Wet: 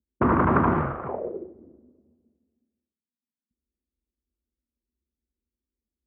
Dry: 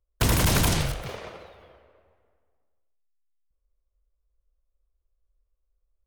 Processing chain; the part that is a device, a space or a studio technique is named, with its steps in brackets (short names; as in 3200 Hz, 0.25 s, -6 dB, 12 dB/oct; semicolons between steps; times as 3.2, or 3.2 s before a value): envelope filter bass rig (envelope low-pass 230–1200 Hz up, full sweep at -27.5 dBFS; speaker cabinet 72–2300 Hz, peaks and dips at 110 Hz -8 dB, 240 Hz +9 dB, 360 Hz +9 dB)